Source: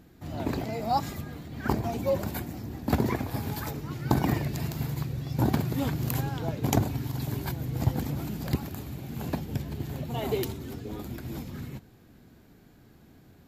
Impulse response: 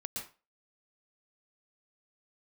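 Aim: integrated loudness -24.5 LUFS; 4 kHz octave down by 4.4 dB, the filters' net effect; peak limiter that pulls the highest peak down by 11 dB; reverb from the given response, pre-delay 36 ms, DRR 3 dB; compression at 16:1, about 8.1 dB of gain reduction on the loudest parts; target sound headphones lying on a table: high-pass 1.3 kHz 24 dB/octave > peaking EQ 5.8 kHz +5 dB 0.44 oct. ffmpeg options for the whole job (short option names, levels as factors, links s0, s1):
-filter_complex "[0:a]equalizer=f=4000:t=o:g=-7.5,acompressor=threshold=0.0447:ratio=16,alimiter=level_in=1.06:limit=0.0631:level=0:latency=1,volume=0.944,asplit=2[s0][s1];[1:a]atrim=start_sample=2205,adelay=36[s2];[s1][s2]afir=irnorm=-1:irlink=0,volume=0.708[s3];[s0][s3]amix=inputs=2:normalize=0,highpass=f=1300:w=0.5412,highpass=f=1300:w=1.3066,equalizer=f=5800:t=o:w=0.44:g=5,volume=11.2"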